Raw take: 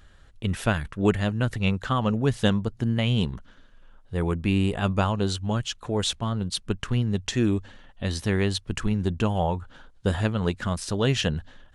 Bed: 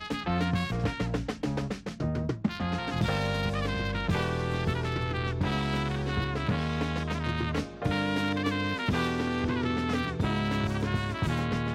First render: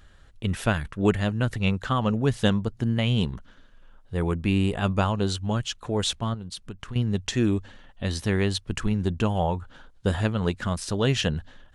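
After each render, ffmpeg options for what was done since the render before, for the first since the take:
-filter_complex "[0:a]asettb=1/sr,asplit=3[s0][s1][s2];[s0]atrim=end=6.344[s3];[s1]atrim=start=6.34:end=6.96,asetpts=PTS-STARTPTS,afade=t=in:d=0.004:c=qsin,afade=t=out:st=0.616:d=0.004:c=qsin,acompressor=threshold=0.0178:ratio=3:attack=3.2:release=140:knee=1:detection=peak[s4];[s2]atrim=start=6.956[s5];[s3][s4]acrossfade=d=0.004:c1=hsin:c2=qsin[s6];[s6][s5]acrossfade=d=0.004:c1=qsin:c2=hsin"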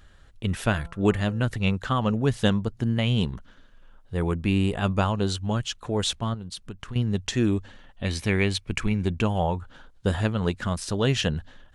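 -filter_complex "[0:a]asettb=1/sr,asplit=3[s0][s1][s2];[s0]atrim=end=0.594[s3];[s1]atrim=start=0.59:end=1.44,asetpts=PTS-STARTPTS,afade=t=in:d=0.004:c=qsin,afade=t=out:st=0.846:d=0.004:c=qsin,bandreject=f=170:t=h:w=4,bandreject=f=340:t=h:w=4,bandreject=f=510:t=h:w=4,bandreject=f=680:t=h:w=4,bandreject=f=850:t=h:w=4,bandreject=f=1020:t=h:w=4,bandreject=f=1190:t=h:w=4,bandreject=f=1360:t=h:w=4[s4];[s2]atrim=start=1.436[s5];[s3][s4]acrossfade=d=0.004:c1=hsin:c2=qsin[s6];[s6][s5]acrossfade=d=0.004:c1=qsin:c2=hsin,asettb=1/sr,asplit=3[s7][s8][s9];[s7]atrim=end=8.054[s10];[s8]atrim=start=8.05:end=9.22,asetpts=PTS-STARTPTS,afade=t=in:d=0.004:c=qsin,afade=t=out:st=1.166:d=0.004:c=qsin,equalizer=f=2300:t=o:w=0.23:g=13.5[s11];[s9]atrim=start=9.216[s12];[s10][s11]acrossfade=d=0.004:c1=hsin:c2=qsin[s13];[s13][s12]acrossfade=d=0.004:c1=qsin:c2=hsin"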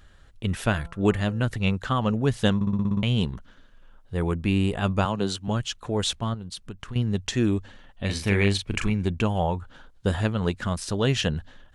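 -filter_complex "[0:a]asettb=1/sr,asplit=3[s0][s1][s2];[s0]atrim=end=5.054[s3];[s1]atrim=start=5.05:end=5.48,asetpts=PTS-STARTPTS,afade=t=in:d=0.004:c=qsin,afade=t=out:st=0.426:d=0.004:c=qsin,highpass=f=120:w=0.5412,highpass=f=120:w=1.3066[s4];[s2]atrim=start=5.476[s5];[s3][s4]acrossfade=d=0.004:c1=hsin:c2=qsin[s6];[s6][s5]acrossfade=d=0.004:c1=qsin:c2=hsin,asettb=1/sr,asplit=3[s7][s8][s9];[s7]atrim=end=8.054[s10];[s8]atrim=start=8.05:end=8.9,asetpts=PTS-STARTPTS,afade=t=in:d=0.004:c=qsin,afade=t=out:st=0.846:d=0.004:c=qsin,asplit=2[s11][s12];[s12]adelay=40,volume=0.531[s13];[s11][s13]amix=inputs=2:normalize=0,atrim=end_sample=37485[s14];[s9]atrim=start=8.896[s15];[s10][s14]acrossfade=d=0.004:c1=hsin:c2=qsin[s16];[s16][s15]acrossfade=d=0.004:c1=qsin:c2=hsin,asplit=9[s17][s18][s19][s20][s21][s22][s23][s24][s25];[s17]atrim=end=2.612[s26];[s18]atrim=start=2.548:end=2.612[s27];[s19]atrim=start=2.548:end=2.612[s28];[s20]atrim=start=2.548:end=2.612[s29];[s21]atrim=start=2.548:end=2.612[s30];[s22]atrim=start=2.548:end=2.612[s31];[s23]atrim=start=2.548:end=2.612[s32];[s24]atrim=start=2.548:end=2.612[s33];[s25]atrim=start=3.028[s34];[s26][s27]acrossfade=d=0.004:c1=hsin:c2=hsin[s35];[s35][s28]acrossfade=d=0.004:c1=hsin:c2=hsin[s36];[s36][s29]acrossfade=d=0.004:c1=hsin:c2=hsin[s37];[s37][s30]acrossfade=d=0.004:c1=hsin:c2=hsin[s38];[s38][s31]acrossfade=d=0.004:c1=hsin:c2=hsin[s39];[s39][s32]acrossfade=d=0.004:c1=hsin:c2=hsin[s40];[s40][s33]acrossfade=d=0.004:c1=hsin:c2=hsin[s41];[s41][s34]acrossfade=d=0.004:c1=hsin:c2=hsin"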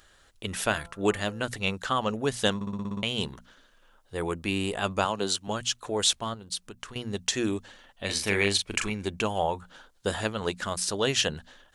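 -af "bass=f=250:g=-12,treble=f=4000:g=7,bandreject=f=60:t=h:w=6,bandreject=f=120:t=h:w=6,bandreject=f=180:t=h:w=6,bandreject=f=240:t=h:w=6"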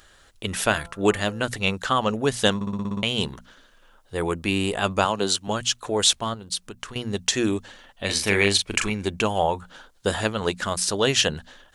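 -af "volume=1.78"

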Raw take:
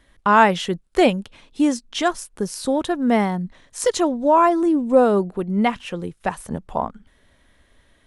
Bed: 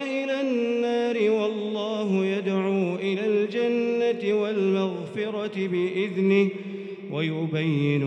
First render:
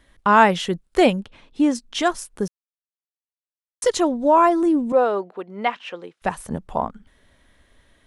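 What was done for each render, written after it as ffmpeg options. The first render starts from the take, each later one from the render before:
-filter_complex "[0:a]asettb=1/sr,asplit=3[s0][s1][s2];[s0]atrim=end=1.204[s3];[s1]atrim=start=1.2:end=1.75,asetpts=PTS-STARTPTS,afade=t=in:d=0.004:c=qsin,afade=t=out:st=0.546:d=0.004:c=qsin,lowpass=f=3200:p=1[s4];[s2]atrim=start=1.746[s5];[s3][s4]acrossfade=d=0.004:c1=hsin:c2=qsin[s6];[s6][s5]acrossfade=d=0.004:c1=qsin:c2=hsin,asettb=1/sr,asplit=3[s7][s8][s9];[s7]atrim=end=4.924[s10];[s8]atrim=start=4.92:end=6.22,asetpts=PTS-STARTPTS,afade=t=in:d=0.004:c=qsin,afade=t=out:st=1.296:d=0.004:c=qsin,highpass=500,lowpass=4200[s11];[s9]atrim=start=6.216[s12];[s10][s11]acrossfade=d=0.004:c1=hsin:c2=qsin[s13];[s13][s12]acrossfade=d=0.004:c1=qsin:c2=hsin,asplit=3[s14][s15][s16];[s14]atrim=end=2.48,asetpts=PTS-STARTPTS,afade=t=out:st=2.476:d=0.004:c=hsin[s17];[s15]atrim=start=2.48:end=3.82,asetpts=PTS-STARTPTS,volume=0[s18];[s16]atrim=start=3.82,asetpts=PTS-STARTPTS,afade=t=in:d=0.004:c=hsin[s19];[s17][s18][s19]concat=n=3:v=0:a=1"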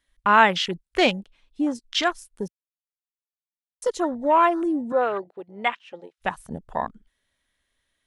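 -af "afwtdn=0.0282,tiltshelf=f=1400:g=-6.5"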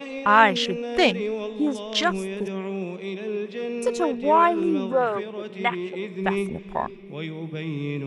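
-filter_complex "[1:a]volume=0.501[s0];[0:a][s0]amix=inputs=2:normalize=0"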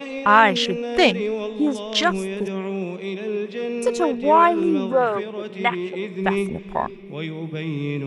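-af "volume=1.41,alimiter=limit=0.794:level=0:latency=1"

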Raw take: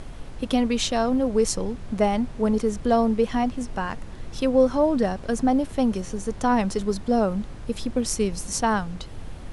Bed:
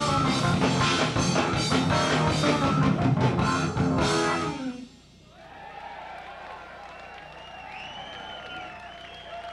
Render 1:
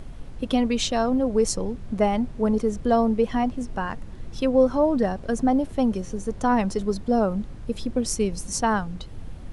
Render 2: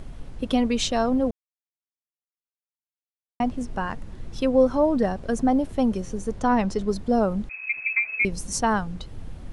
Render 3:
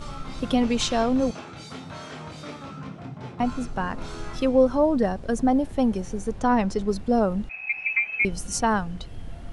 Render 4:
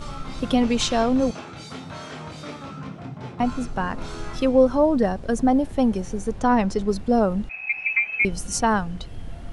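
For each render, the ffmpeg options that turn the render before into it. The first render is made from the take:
-af "afftdn=nr=6:nf=-38"
-filter_complex "[0:a]asettb=1/sr,asplit=3[s0][s1][s2];[s0]atrim=end=6.394[s3];[s1]atrim=start=6.39:end=6.88,asetpts=PTS-STARTPTS,afade=t=in:d=0.004:c=qsin,afade=t=out:st=0.486:d=0.004:c=qsin,lowpass=7300[s4];[s2]atrim=start=6.876[s5];[s3][s4]acrossfade=d=0.004:c1=hsin:c2=qsin[s6];[s6][s5]acrossfade=d=0.004:c1=qsin:c2=hsin,asettb=1/sr,asplit=3[s7][s8][s9];[s7]atrim=end=7.494[s10];[s8]atrim=start=7.49:end=8.25,asetpts=PTS-STARTPTS,afade=t=in:d=0.004:c=qsin,afade=t=out:st=0.756:d=0.004:c=qsin,lowpass=f=2200:t=q:w=0.5098,lowpass=f=2200:t=q:w=0.6013,lowpass=f=2200:t=q:w=0.9,lowpass=f=2200:t=q:w=2.563,afreqshift=-2600[s11];[s9]atrim=start=8.246[s12];[s10][s11]acrossfade=d=0.004:c1=hsin:c2=qsin[s13];[s13][s12]acrossfade=d=0.004:c1=qsin:c2=hsin,asplit=3[s14][s15][s16];[s14]atrim=end=1.31,asetpts=PTS-STARTPTS,afade=t=out:st=1.306:d=0.004:c=hsin[s17];[s15]atrim=start=1.31:end=3.4,asetpts=PTS-STARTPTS,volume=0[s18];[s16]atrim=start=3.4,asetpts=PTS-STARTPTS,afade=t=in:d=0.004:c=hsin[s19];[s17][s18][s19]concat=n=3:v=0:a=1"
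-filter_complex "[1:a]volume=0.178[s0];[0:a][s0]amix=inputs=2:normalize=0"
-af "volume=1.26"

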